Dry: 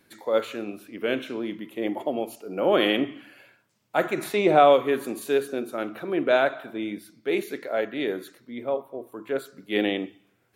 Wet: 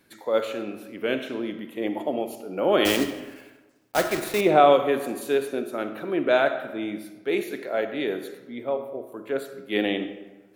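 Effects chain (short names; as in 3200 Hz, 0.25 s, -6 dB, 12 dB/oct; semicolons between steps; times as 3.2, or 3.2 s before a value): 2.85–4.42 block floating point 3-bit; on a send: reverb RT60 1.2 s, pre-delay 20 ms, DRR 10 dB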